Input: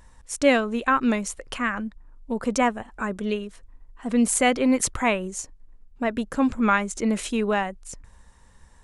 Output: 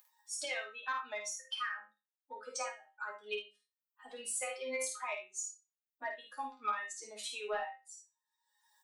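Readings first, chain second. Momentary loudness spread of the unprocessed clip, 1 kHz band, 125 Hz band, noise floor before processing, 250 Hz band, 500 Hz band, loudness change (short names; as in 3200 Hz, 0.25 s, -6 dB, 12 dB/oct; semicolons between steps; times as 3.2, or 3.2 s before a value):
14 LU, -14.5 dB, under -40 dB, -53 dBFS, -36.5 dB, -17.0 dB, -16.0 dB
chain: per-bin expansion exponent 2; HPF 660 Hz 24 dB/oct; in parallel at -1 dB: upward compressor, threshold -29 dBFS; on the sum: limiter -16 dBFS, peak gain reduction 10.5 dB; compressor, threshold -27 dBFS, peak gain reduction 6.5 dB; resonator bank G#3 major, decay 0.26 s; soft clip -33 dBFS, distortion -22 dB; on a send: early reflections 12 ms -8.5 dB, 52 ms -5.5 dB, 75 ms -12.5 dB; on the sum: gain +8.5 dB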